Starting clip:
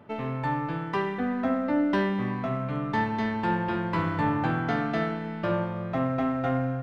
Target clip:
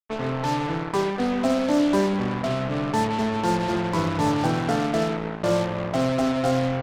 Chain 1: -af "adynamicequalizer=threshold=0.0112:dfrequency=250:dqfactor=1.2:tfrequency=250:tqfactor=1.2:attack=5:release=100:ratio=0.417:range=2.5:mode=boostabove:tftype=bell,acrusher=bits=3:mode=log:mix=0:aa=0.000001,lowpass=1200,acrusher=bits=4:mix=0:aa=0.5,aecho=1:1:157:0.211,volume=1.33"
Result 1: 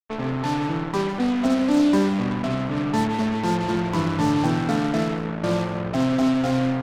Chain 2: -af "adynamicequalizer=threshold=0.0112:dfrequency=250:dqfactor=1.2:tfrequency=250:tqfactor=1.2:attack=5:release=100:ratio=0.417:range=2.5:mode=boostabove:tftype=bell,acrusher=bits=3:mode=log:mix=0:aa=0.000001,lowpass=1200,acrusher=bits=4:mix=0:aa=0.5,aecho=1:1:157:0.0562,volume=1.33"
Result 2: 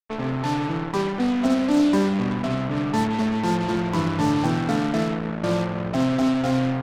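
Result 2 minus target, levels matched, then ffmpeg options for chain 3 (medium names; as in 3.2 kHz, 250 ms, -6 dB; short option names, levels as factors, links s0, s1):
500 Hz band -3.5 dB
-af "adynamicequalizer=threshold=0.0112:dfrequency=520:dqfactor=1.2:tfrequency=520:tqfactor=1.2:attack=5:release=100:ratio=0.417:range=2.5:mode=boostabove:tftype=bell,acrusher=bits=3:mode=log:mix=0:aa=0.000001,lowpass=1200,acrusher=bits=4:mix=0:aa=0.5,aecho=1:1:157:0.0562,volume=1.33"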